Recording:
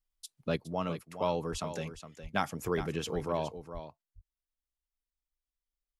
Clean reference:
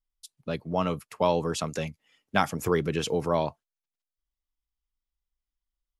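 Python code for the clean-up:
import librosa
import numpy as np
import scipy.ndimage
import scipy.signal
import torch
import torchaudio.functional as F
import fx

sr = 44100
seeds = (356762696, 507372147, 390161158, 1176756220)

y = fx.fix_deplosive(x, sr, at_s=(1.51, 2.22, 2.77, 3.14, 3.73))
y = fx.fix_echo_inverse(y, sr, delay_ms=414, level_db=-11.0)
y = fx.fix_level(y, sr, at_s=0.57, step_db=7.0)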